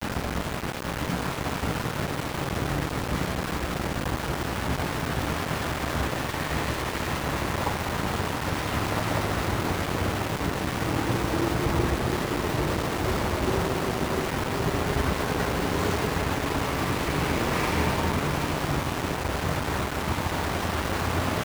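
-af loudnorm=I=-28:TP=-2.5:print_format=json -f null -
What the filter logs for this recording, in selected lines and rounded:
"input_i" : "-27.5",
"input_tp" : "-12.0",
"input_lra" : "2.6",
"input_thresh" : "-37.5",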